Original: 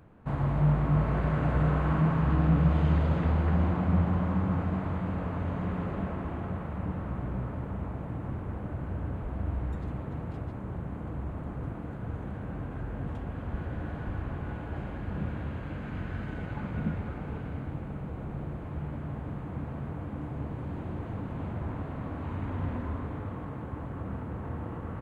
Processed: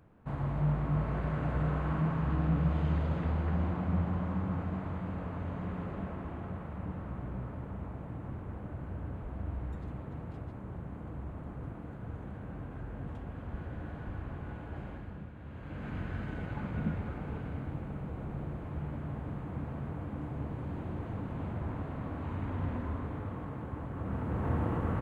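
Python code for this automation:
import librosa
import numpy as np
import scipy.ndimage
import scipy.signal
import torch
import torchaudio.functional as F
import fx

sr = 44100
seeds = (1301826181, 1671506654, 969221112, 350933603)

y = fx.gain(x, sr, db=fx.line((14.93, -5.5), (15.33, -14.0), (15.86, -2.0), (23.92, -2.0), (24.51, 5.5)))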